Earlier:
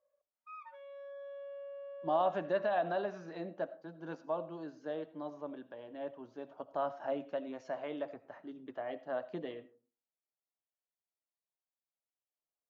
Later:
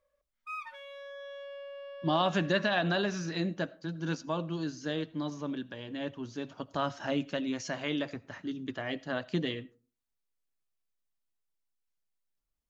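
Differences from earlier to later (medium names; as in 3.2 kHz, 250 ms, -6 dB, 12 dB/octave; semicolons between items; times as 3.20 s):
speech: send -6.0 dB; master: remove band-pass filter 670 Hz, Q 1.8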